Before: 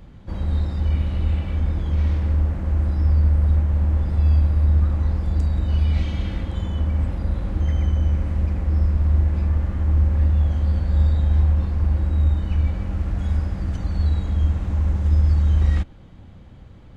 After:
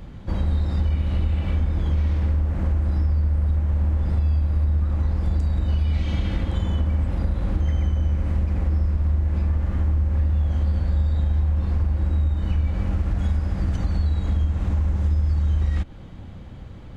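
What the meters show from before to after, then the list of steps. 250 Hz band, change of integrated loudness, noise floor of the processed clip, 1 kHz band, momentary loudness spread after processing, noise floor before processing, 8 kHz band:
-0.5 dB, -2.0 dB, -38 dBFS, -0.5 dB, 3 LU, -43 dBFS, n/a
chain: compressor, threshold -23 dBFS, peak gain reduction 10.5 dB; gain +5 dB

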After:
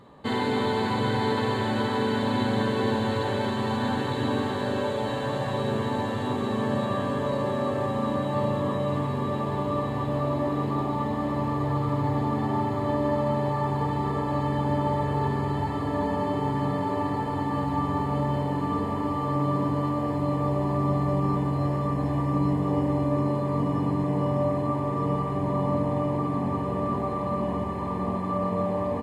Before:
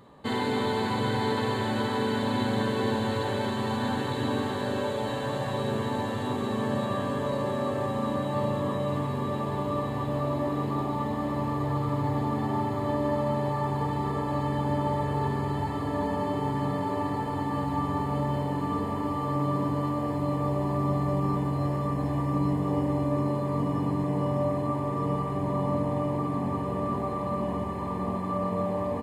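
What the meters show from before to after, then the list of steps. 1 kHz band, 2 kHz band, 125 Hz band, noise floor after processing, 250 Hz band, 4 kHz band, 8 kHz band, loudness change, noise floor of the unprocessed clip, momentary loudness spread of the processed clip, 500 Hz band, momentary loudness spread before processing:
+2.0 dB, +2.0 dB, +2.0 dB, -29 dBFS, +2.0 dB, +1.0 dB, n/a, +2.0 dB, -31 dBFS, 3 LU, +2.0 dB, 3 LU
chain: high shelf 8700 Hz -7.5 dB; gain +2 dB

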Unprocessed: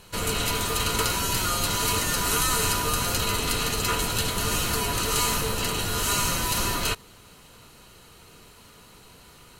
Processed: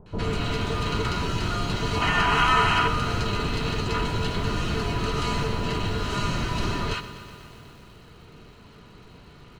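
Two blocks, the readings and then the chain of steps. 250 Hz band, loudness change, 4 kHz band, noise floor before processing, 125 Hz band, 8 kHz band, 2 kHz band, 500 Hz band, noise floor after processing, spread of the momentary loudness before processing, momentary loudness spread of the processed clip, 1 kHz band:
+3.5 dB, -1.0 dB, -3.5 dB, -51 dBFS, +4.0 dB, -16.0 dB, +1.5 dB, +1.5 dB, -49 dBFS, 3 LU, 9 LU, +2.5 dB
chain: high shelf 2100 Hz -11.5 dB; notch 520 Hz, Q 12; in parallel at -0.5 dB: compressor, threshold -31 dBFS, peak gain reduction 8 dB; on the sum: bell 140 Hz +2.5 dB 1 oct; spectral gain 1.96–2.81, 640–3300 Hz +10 dB; Chebyshev low-pass 4300 Hz, order 2; bands offset in time lows, highs 60 ms, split 890 Hz; lo-fi delay 0.123 s, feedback 80%, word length 8-bit, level -14 dB

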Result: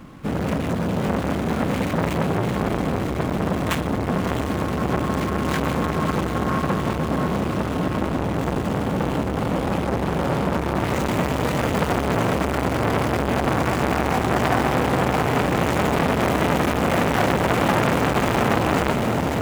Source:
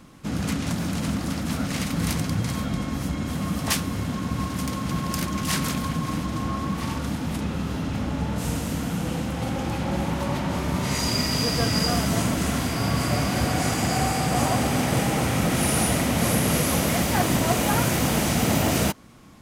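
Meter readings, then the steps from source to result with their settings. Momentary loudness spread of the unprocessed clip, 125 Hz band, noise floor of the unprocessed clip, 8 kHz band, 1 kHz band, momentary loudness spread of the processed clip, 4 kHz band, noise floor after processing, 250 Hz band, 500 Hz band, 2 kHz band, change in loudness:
7 LU, +1.5 dB, -30 dBFS, -9.0 dB, +5.5 dB, 4 LU, -3.5 dB, -25 dBFS, +2.5 dB, +7.0 dB, +4.0 dB, +2.5 dB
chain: median filter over 9 samples; on a send: diffused feedback echo 0.649 s, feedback 63%, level -5 dB; on the sum: core saturation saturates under 1500 Hz; gain +7.5 dB

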